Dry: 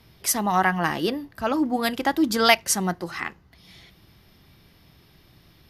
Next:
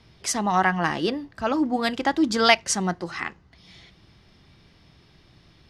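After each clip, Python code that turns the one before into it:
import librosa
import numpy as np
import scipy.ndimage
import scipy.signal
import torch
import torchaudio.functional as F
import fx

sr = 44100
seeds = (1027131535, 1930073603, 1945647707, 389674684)

y = scipy.signal.sosfilt(scipy.signal.butter(4, 8200.0, 'lowpass', fs=sr, output='sos'), x)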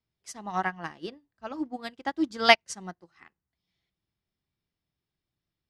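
y = fx.upward_expand(x, sr, threshold_db=-35.0, expansion=2.5)
y = y * 10.0 ** (1.0 / 20.0)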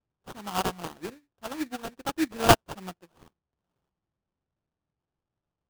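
y = fx.sample_hold(x, sr, seeds[0], rate_hz=2100.0, jitter_pct=20)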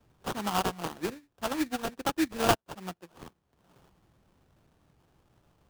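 y = fx.band_squash(x, sr, depth_pct=70)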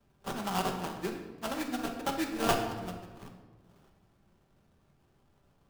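y = fx.room_shoebox(x, sr, seeds[1], volume_m3=880.0, walls='mixed', distance_m=1.2)
y = y * 10.0 ** (-4.5 / 20.0)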